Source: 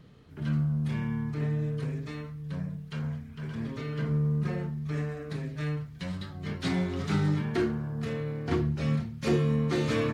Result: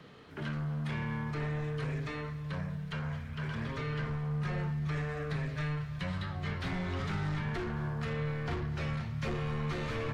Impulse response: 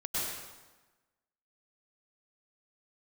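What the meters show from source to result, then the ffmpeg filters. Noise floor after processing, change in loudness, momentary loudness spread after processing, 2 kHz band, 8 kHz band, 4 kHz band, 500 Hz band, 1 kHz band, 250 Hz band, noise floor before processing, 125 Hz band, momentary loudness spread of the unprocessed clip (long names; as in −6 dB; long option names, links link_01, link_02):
−41 dBFS, −5.0 dB, 4 LU, +0.5 dB, can't be measured, −3.0 dB, −6.5 dB, 0.0 dB, −7.0 dB, −45 dBFS, −4.5 dB, 10 LU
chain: -filter_complex "[0:a]asplit=2[link_01][link_02];[link_02]highpass=frequency=720:poles=1,volume=23dB,asoftclip=type=tanh:threshold=-15.5dB[link_03];[link_01][link_03]amix=inputs=2:normalize=0,lowpass=frequency=2800:poles=1,volume=-6dB,asubboost=boost=8.5:cutoff=97,acrossover=split=93|660|2900[link_04][link_05][link_06][link_07];[link_04]acompressor=threshold=-36dB:ratio=4[link_08];[link_05]acompressor=threshold=-29dB:ratio=4[link_09];[link_06]acompressor=threshold=-35dB:ratio=4[link_10];[link_07]acompressor=threshold=-47dB:ratio=4[link_11];[link_08][link_09][link_10][link_11]amix=inputs=4:normalize=0,asplit=2[link_12][link_13];[1:a]atrim=start_sample=2205,adelay=113[link_14];[link_13][link_14]afir=irnorm=-1:irlink=0,volume=-19.5dB[link_15];[link_12][link_15]amix=inputs=2:normalize=0,volume=-6.5dB"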